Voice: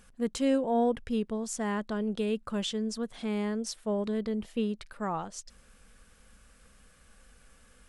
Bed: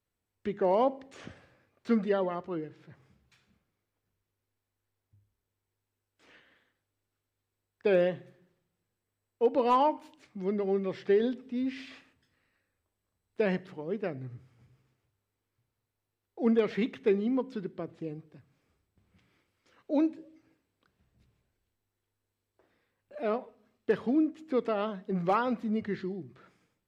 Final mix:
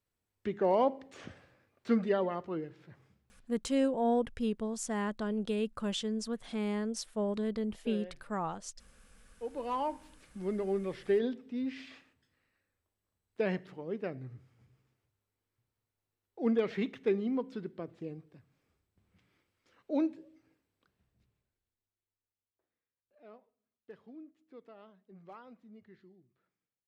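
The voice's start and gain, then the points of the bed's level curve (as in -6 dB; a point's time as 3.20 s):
3.30 s, -2.5 dB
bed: 3.04 s -1.5 dB
3.83 s -19.5 dB
9.09 s -19.5 dB
10.18 s -3.5 dB
20.83 s -3.5 dB
23.04 s -23.5 dB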